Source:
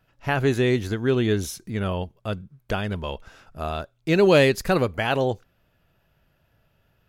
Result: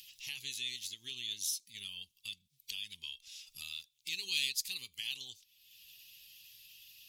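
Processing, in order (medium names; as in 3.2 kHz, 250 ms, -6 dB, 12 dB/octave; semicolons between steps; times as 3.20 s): coarse spectral quantiser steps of 15 dB; inverse Chebyshev high-pass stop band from 1.6 kHz, stop band 40 dB; upward compressor, threshold -37 dBFS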